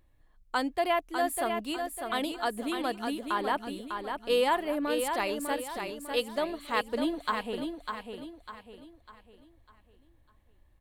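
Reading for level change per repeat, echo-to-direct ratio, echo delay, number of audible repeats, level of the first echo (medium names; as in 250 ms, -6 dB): -8.0 dB, -5.5 dB, 600 ms, 4, -6.0 dB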